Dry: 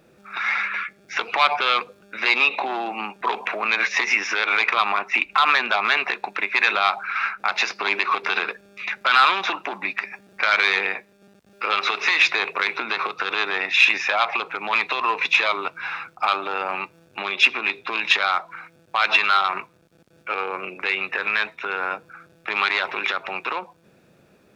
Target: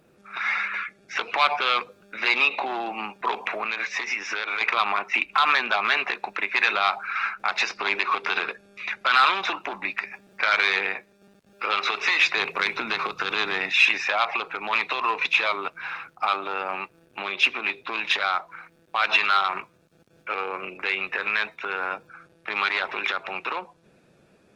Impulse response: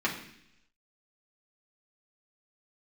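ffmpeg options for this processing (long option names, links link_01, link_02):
-filter_complex "[0:a]asettb=1/sr,asplit=3[link_01][link_02][link_03];[link_01]atrim=end=3.614[link_04];[link_02]atrim=start=3.61:end=4.61,asetpts=PTS-STARTPTS,afade=type=in:duration=0.004:curve=qsin,afade=type=out:start_time=0.996:duration=0.004:curve=qsin,acompressor=threshold=-24dB:ratio=2.5[link_05];[link_03]atrim=start=4.606[link_06];[link_04][link_05]acrossfade=duration=0.004:curve1=hsin:curve2=qsin[link_07];[link_07][link_06]acrossfade=duration=0.004:curve1=qsin:curve2=hsin,asettb=1/sr,asplit=3[link_08][link_09][link_10];[link_08]atrim=end=12.374[link_11];[link_09]atrim=start=12.37:end=13.72,asetpts=PTS-STARTPTS,afade=type=in:duration=0.004:curve=qsin,afade=type=out:start_time=1.346:duration=0.004:curve=qsin,bass=frequency=250:gain=10,treble=frequency=4000:gain=5[link_12];[link_10]atrim=start=13.716[link_13];[link_11][link_12]acrossfade=duration=0.004:curve1=hsin:curve2=qsin[link_14];[link_14][link_13]acrossfade=duration=0.004:curve1=qsin:curve2=hsin,volume=-2.5dB" -ar 48000 -c:a libopus -b:a 20k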